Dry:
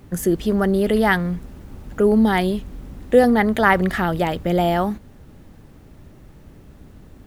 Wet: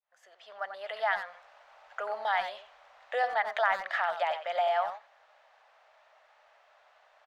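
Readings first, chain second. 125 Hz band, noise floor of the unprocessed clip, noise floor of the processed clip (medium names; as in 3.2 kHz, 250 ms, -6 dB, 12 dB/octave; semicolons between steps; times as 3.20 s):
under -40 dB, -46 dBFS, -64 dBFS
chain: fade-in on the opening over 1.50 s; elliptic high-pass 640 Hz, stop band 50 dB; compression 2.5:1, threshold -24 dBFS, peak gain reduction 9.5 dB; distance through air 170 m; speakerphone echo 90 ms, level -9 dB; trim -1.5 dB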